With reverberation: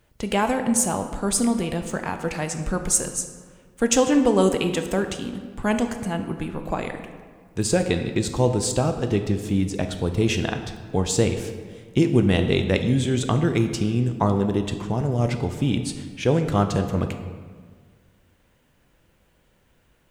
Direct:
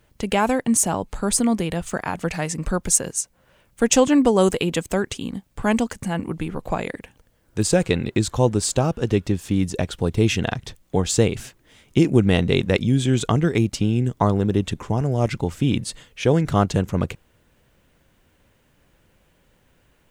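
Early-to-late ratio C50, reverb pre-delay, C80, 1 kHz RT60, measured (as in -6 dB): 8.5 dB, 7 ms, 10.0 dB, 1.6 s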